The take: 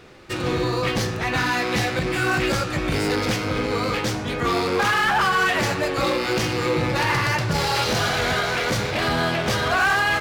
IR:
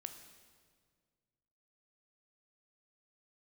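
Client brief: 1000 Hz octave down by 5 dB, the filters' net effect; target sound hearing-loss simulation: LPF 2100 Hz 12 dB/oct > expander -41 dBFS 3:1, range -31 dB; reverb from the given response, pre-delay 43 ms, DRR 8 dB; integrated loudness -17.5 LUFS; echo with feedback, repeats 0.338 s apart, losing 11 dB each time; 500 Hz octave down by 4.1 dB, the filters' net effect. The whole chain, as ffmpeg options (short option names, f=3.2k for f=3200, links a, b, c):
-filter_complex "[0:a]equalizer=f=500:t=o:g=-4,equalizer=f=1k:t=o:g=-5,aecho=1:1:338|676|1014:0.282|0.0789|0.0221,asplit=2[a][b];[1:a]atrim=start_sample=2205,adelay=43[c];[b][c]afir=irnorm=-1:irlink=0,volume=-4dB[d];[a][d]amix=inputs=2:normalize=0,lowpass=2.1k,agate=range=-31dB:threshold=-41dB:ratio=3,volume=7dB"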